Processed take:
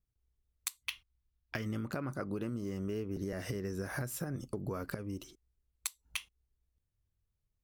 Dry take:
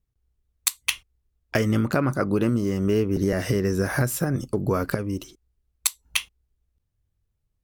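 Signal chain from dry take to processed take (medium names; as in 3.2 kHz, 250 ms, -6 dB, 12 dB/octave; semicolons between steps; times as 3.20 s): 0.83–1.66 s: ten-band graphic EQ 500 Hz -7 dB, 4 kHz +4 dB, 8 kHz -10 dB; compression 3:1, threshold -29 dBFS, peak gain reduction 10 dB; trim -7.5 dB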